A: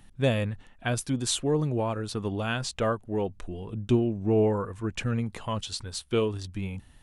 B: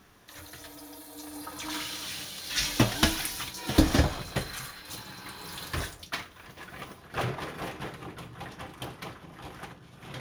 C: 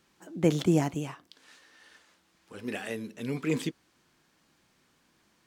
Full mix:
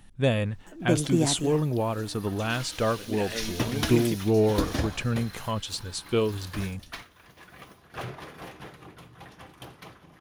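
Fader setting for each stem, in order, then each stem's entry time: +1.0 dB, -5.5 dB, 0.0 dB; 0.00 s, 0.80 s, 0.45 s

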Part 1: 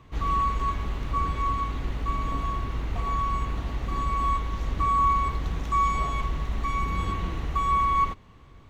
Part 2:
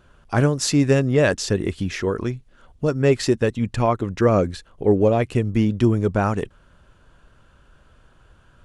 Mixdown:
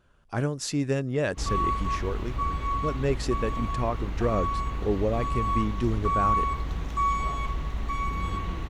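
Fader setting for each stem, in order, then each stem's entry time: -2.0 dB, -9.5 dB; 1.25 s, 0.00 s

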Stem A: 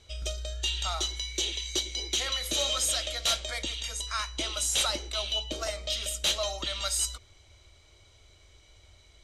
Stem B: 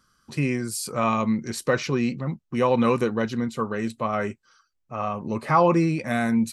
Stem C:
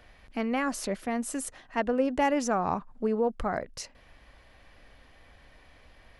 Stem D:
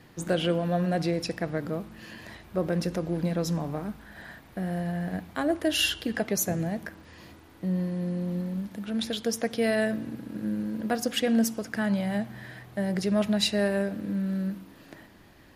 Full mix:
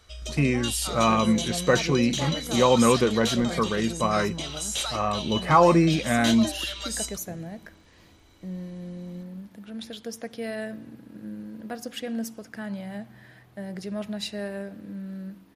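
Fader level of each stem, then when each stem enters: -2.5 dB, +1.5 dB, -9.5 dB, -7.5 dB; 0.00 s, 0.00 s, 0.00 s, 0.80 s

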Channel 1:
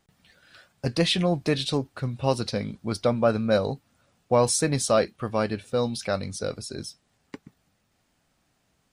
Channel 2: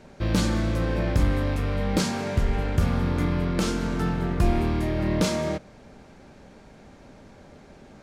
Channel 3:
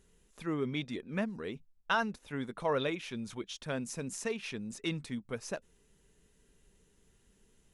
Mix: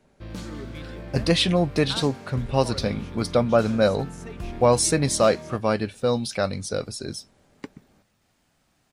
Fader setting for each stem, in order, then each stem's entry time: +2.5 dB, -13.0 dB, -7.0 dB; 0.30 s, 0.00 s, 0.00 s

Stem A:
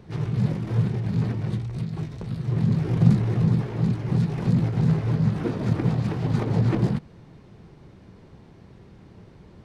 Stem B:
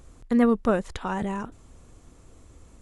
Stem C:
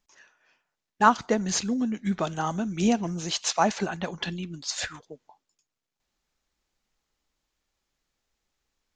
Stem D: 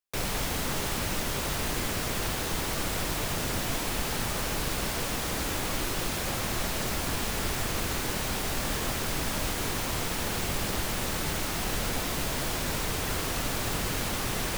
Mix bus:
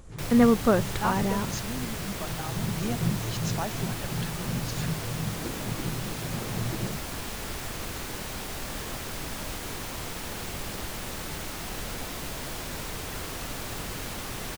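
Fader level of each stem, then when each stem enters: -11.0 dB, +1.0 dB, -10.5 dB, -5.0 dB; 0.00 s, 0.00 s, 0.00 s, 0.05 s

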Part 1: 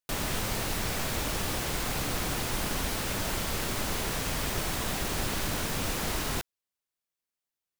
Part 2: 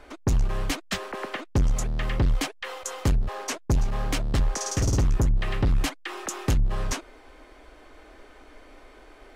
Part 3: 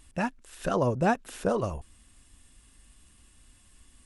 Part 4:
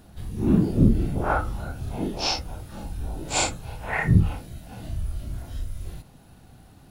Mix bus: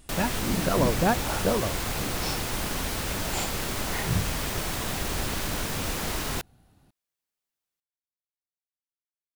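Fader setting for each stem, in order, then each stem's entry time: +1.0 dB, mute, +1.0 dB, -10.0 dB; 0.00 s, mute, 0.00 s, 0.00 s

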